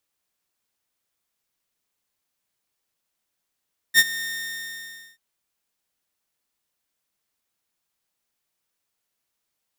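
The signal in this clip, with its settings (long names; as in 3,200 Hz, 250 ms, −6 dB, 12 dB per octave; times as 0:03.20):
note with an ADSR envelope saw 1,830 Hz, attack 49 ms, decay 43 ms, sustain −17.5 dB, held 0.27 s, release 965 ms −7 dBFS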